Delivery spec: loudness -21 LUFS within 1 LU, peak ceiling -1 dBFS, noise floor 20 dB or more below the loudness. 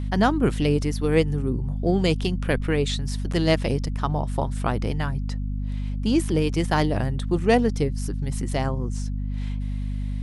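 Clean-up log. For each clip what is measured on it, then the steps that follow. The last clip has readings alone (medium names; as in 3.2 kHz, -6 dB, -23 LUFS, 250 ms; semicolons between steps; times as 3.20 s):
hum 50 Hz; highest harmonic 250 Hz; hum level -25 dBFS; loudness -24.5 LUFS; peak level -5.5 dBFS; loudness target -21.0 LUFS
-> hum notches 50/100/150/200/250 Hz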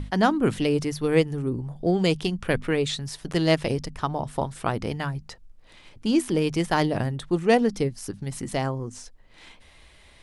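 hum not found; loudness -25.5 LUFS; peak level -6.5 dBFS; loudness target -21.0 LUFS
-> trim +4.5 dB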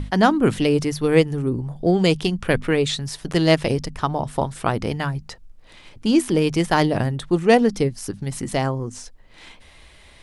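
loudness -21.0 LUFS; peak level -2.0 dBFS; noise floor -48 dBFS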